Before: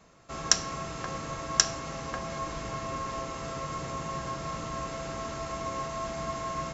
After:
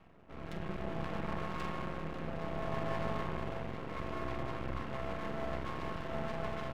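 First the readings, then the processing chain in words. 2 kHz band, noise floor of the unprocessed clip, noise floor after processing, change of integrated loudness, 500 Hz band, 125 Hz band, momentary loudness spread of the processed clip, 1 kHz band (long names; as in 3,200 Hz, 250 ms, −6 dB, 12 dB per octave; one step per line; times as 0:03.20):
−5.5 dB, −39 dBFS, −48 dBFS, −7.5 dB, −3.0 dB, −1.5 dB, 5 LU, −7.0 dB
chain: reverb reduction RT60 0.51 s
tilt shelving filter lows +3.5 dB, about 890 Hz
reversed playback
upward compression, threshold −42 dBFS
reversed playback
linear-phase brick-wall low-pass 3,100 Hz
tube saturation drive 36 dB, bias 0.35
rotating-speaker cabinet horn 0.6 Hz, later 6.7 Hz, at 0:03.66
double-tracking delay 45 ms −7 dB
echo through a band-pass that steps 160 ms, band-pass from 190 Hz, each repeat 0.7 octaves, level −2 dB
spring reverb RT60 3 s, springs 31/45 ms, chirp 75 ms, DRR −2.5 dB
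half-wave rectification
level +1.5 dB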